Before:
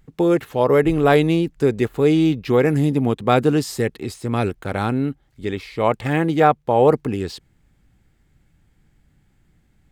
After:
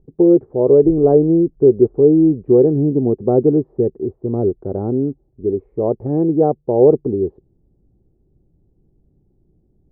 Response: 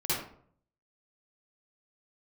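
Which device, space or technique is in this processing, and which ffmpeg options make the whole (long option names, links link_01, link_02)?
under water: -af "lowpass=frequency=640:width=0.5412,lowpass=frequency=640:width=1.3066,equalizer=frequency=380:width_type=o:width=0.45:gain=10.5"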